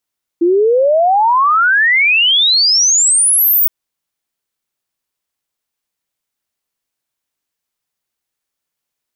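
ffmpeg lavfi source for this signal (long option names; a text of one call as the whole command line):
ffmpeg -f lavfi -i "aevalsrc='0.398*clip(min(t,3.27-t)/0.01,0,1)*sin(2*PI*330*3.27/log(16000/330)*(exp(log(16000/330)*t/3.27)-1))':duration=3.27:sample_rate=44100" out.wav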